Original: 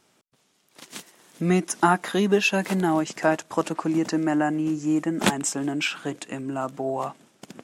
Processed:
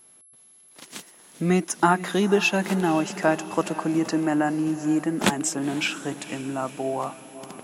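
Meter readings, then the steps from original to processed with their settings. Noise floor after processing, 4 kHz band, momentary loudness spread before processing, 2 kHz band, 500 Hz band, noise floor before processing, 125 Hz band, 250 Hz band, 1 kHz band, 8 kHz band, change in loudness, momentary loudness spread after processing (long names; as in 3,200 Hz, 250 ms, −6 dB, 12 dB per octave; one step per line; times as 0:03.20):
−54 dBFS, 0.0 dB, 12 LU, 0.0 dB, 0.0 dB, −66 dBFS, 0.0 dB, 0.0 dB, 0.0 dB, +0.5 dB, 0.0 dB, 12 LU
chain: feedback delay with all-pass diffusion 491 ms, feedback 56%, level −15 dB
steady tone 11,000 Hz −51 dBFS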